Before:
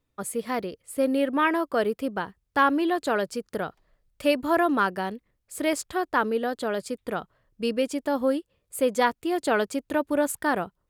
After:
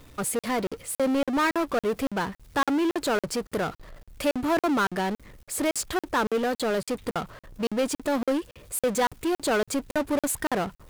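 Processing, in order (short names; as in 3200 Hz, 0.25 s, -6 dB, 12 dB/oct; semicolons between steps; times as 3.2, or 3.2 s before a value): power-law curve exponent 0.5; crackling interface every 0.28 s, samples 2048, zero, from 0.39; gain -6 dB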